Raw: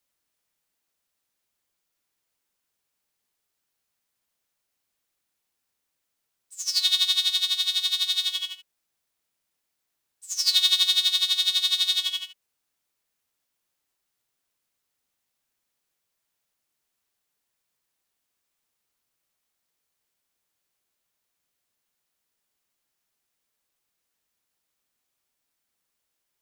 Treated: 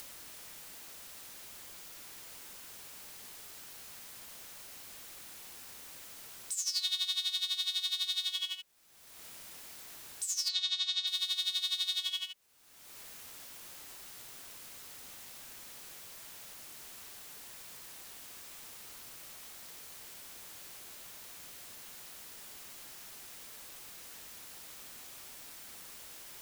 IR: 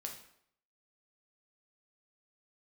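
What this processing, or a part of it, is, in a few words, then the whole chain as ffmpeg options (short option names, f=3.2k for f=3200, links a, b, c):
upward and downward compression: -filter_complex "[0:a]acompressor=mode=upward:threshold=-25dB:ratio=2.5,acompressor=threshold=-31dB:ratio=4,asplit=3[a][b][c];[a]afade=t=out:st=10.48:d=0.02[d];[b]lowpass=f=6.9k:w=0.5412,lowpass=f=6.9k:w=1.3066,afade=t=in:st=10.48:d=0.02,afade=t=out:st=11.06:d=0.02[e];[c]afade=t=in:st=11.06:d=0.02[f];[d][e][f]amix=inputs=3:normalize=0"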